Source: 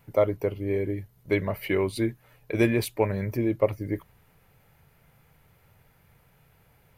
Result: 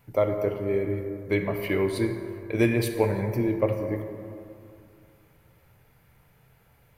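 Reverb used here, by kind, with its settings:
dense smooth reverb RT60 2.5 s, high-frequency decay 0.4×, DRR 4.5 dB
level −1 dB

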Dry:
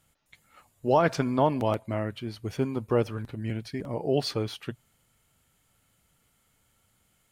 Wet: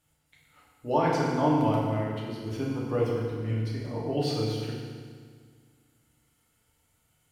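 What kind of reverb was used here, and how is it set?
feedback delay network reverb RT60 1.8 s, low-frequency decay 1.2×, high-frequency decay 0.9×, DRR −5 dB
level −7.5 dB

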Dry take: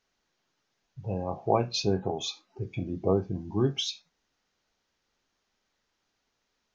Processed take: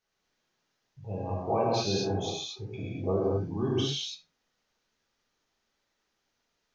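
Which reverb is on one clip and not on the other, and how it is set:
reverb whose tail is shaped and stops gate 270 ms flat, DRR −7 dB
level −8 dB

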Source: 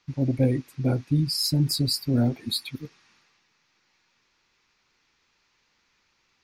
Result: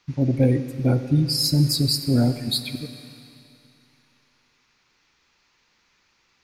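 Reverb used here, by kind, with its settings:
four-comb reverb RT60 2.6 s, combs from 32 ms, DRR 10.5 dB
level +3.5 dB

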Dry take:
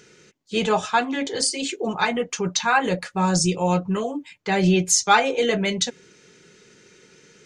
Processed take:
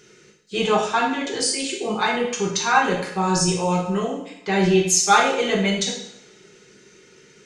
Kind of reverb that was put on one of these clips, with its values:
coupled-rooms reverb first 0.69 s, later 2.2 s, from −26 dB, DRR −1.5 dB
level −2.5 dB

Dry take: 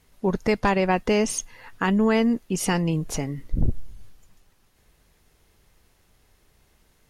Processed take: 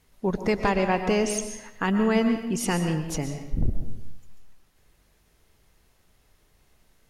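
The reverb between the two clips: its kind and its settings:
comb and all-pass reverb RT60 0.85 s, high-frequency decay 0.85×, pre-delay 85 ms, DRR 6.5 dB
level −2.5 dB

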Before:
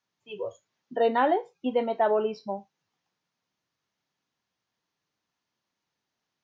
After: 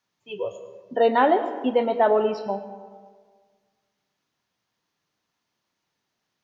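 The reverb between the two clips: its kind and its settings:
comb and all-pass reverb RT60 1.6 s, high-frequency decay 0.5×, pre-delay 65 ms, DRR 11 dB
level +4.5 dB

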